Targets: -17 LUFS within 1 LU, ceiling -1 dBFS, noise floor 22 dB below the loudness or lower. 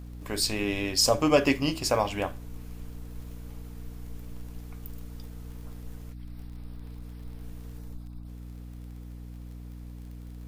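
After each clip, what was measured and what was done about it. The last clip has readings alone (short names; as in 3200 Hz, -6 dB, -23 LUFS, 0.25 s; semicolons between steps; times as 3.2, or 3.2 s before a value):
ticks 29/s; hum 60 Hz; harmonics up to 300 Hz; hum level -39 dBFS; loudness -25.5 LUFS; peak -6.5 dBFS; loudness target -17.0 LUFS
-> de-click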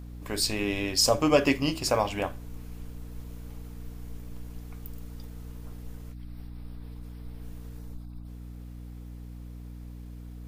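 ticks 0/s; hum 60 Hz; harmonics up to 300 Hz; hum level -39 dBFS
-> notches 60/120/180/240/300 Hz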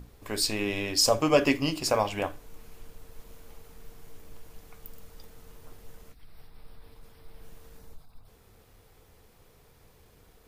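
hum none; loudness -26.0 LUFS; peak -7.5 dBFS; loudness target -17.0 LUFS
-> gain +9 dB; limiter -1 dBFS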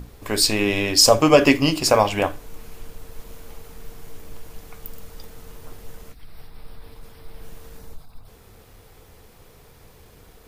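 loudness -17.0 LUFS; peak -1.0 dBFS; noise floor -50 dBFS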